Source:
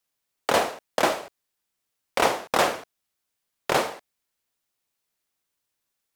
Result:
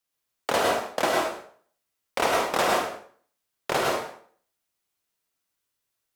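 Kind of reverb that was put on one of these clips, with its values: plate-style reverb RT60 0.51 s, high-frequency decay 0.8×, pre-delay 90 ms, DRR -1 dB; trim -3.5 dB

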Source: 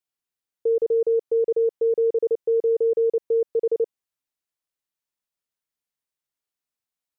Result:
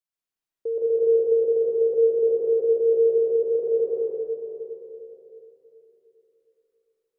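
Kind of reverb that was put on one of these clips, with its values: algorithmic reverb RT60 3.4 s, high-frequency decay 0.35×, pre-delay 90 ms, DRR -6.5 dB; trim -6.5 dB

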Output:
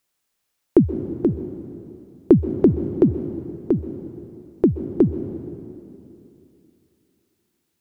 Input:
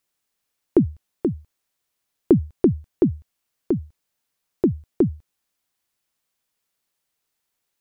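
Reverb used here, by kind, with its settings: plate-style reverb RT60 2.9 s, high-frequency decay 0.85×, pre-delay 115 ms, DRR 9.5 dB; trim +2.5 dB

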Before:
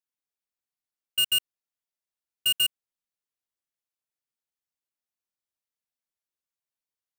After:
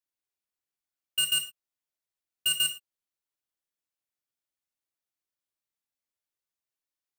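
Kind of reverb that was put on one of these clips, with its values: gated-style reverb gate 140 ms falling, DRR 4.5 dB; trim -2 dB

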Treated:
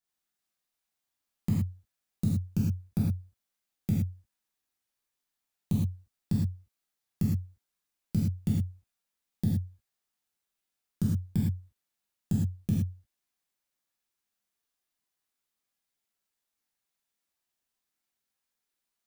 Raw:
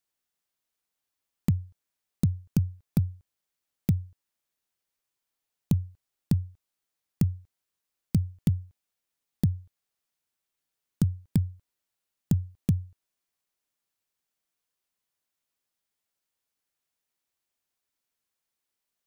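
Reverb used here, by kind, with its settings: gated-style reverb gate 140 ms flat, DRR -6.5 dB; trim -8 dB

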